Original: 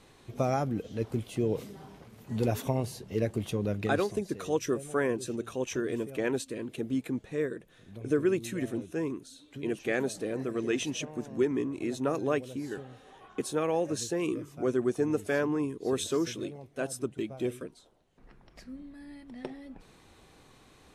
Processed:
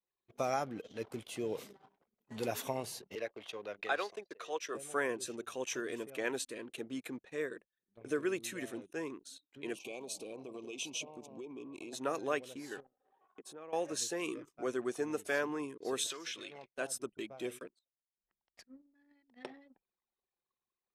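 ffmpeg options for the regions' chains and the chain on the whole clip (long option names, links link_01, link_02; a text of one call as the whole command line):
ffmpeg -i in.wav -filter_complex "[0:a]asettb=1/sr,asplit=3[link_01][link_02][link_03];[link_01]atrim=end=3.154[link_04];[link_02]atrim=start=3.15:end=4.75,asetpts=PTS-STARTPTS,afade=type=in:duration=0.004:curve=qsin,afade=type=out:start_time=1.596:duration=0.004:curve=qsin,agate=range=-33dB:threshold=-39dB:ratio=3:release=100:detection=peak,acrossover=split=420 5200:gain=0.158 1 0.224[link_05][link_06][link_07];[link_05][link_06][link_07]amix=inputs=3:normalize=0[link_08];[link_03]atrim=start=4.746[link_09];[link_04][link_08]acrossfade=duration=0.004:curve1=hsin:curve2=qsin[link_10];[link_10][link_09]acrossfade=duration=0.004:curve1=qsin:curve2=hsin,asettb=1/sr,asplit=3[link_11][link_12][link_13];[link_11]atrim=end=9.754[link_14];[link_12]atrim=start=9.75:end=11.93,asetpts=PTS-STARTPTS,afade=type=in:duration=0.004:curve=qsin,afade=type=out:start_time=2.176:duration=0.004:curve=qsin,asuperstop=centerf=1600:order=20:qfactor=1.5,acompressor=threshold=-33dB:ratio=12:attack=3.2:release=140:knee=1:detection=peak[link_15];[link_13]atrim=start=11.926[link_16];[link_14][link_15]acrossfade=duration=0.004:curve1=hsin:curve2=qsin[link_17];[link_17][link_16]acrossfade=duration=0.004:curve1=qsin:curve2=hsin,asettb=1/sr,asplit=3[link_18][link_19][link_20];[link_18]atrim=end=12.804[link_21];[link_19]atrim=start=12.8:end=13.73,asetpts=PTS-STARTPTS,afade=type=in:duration=0.004:curve=qsin,afade=type=out:start_time=0.926:duration=0.004:curve=qsin,tiltshelf=frequency=1400:gain=4,acompressor=threshold=-48dB:ratio=2.5:attack=3.2:release=140:knee=1:detection=peak[link_22];[link_20]atrim=start=13.726[link_23];[link_21][link_22]acrossfade=duration=0.004:curve1=hsin:curve2=qsin[link_24];[link_24][link_23]acrossfade=duration=0.004:curve1=qsin:curve2=hsin,asettb=1/sr,asplit=3[link_25][link_26][link_27];[link_25]atrim=end=16.104[link_28];[link_26]atrim=start=16.1:end=16.74,asetpts=PTS-STARTPTS,afade=type=in:duration=0.004:curve=qsin,afade=type=out:start_time=0.636:duration=0.004:curve=qsin,equalizer=frequency=2600:width=0.39:gain=14,acompressor=threshold=-37dB:ratio=8:attack=3.2:release=140:knee=1:detection=peak[link_29];[link_27]atrim=start=16.736[link_30];[link_28][link_29]acrossfade=duration=0.004:curve1=hsin:curve2=qsin[link_31];[link_31][link_30]acrossfade=duration=0.004:curve1=qsin:curve2=hsin,highpass=frequency=880:poles=1,anlmdn=0.000631,agate=range=-13dB:threshold=-54dB:ratio=16:detection=peak" out.wav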